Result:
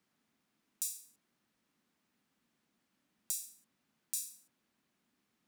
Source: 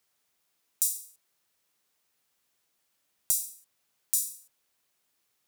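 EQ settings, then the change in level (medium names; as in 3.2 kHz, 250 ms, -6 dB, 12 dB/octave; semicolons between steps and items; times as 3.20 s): FFT filter 100 Hz 0 dB, 230 Hz +14 dB, 460 Hz -2 dB, 1.7 kHz -2 dB, 14 kHz -15 dB; +2.0 dB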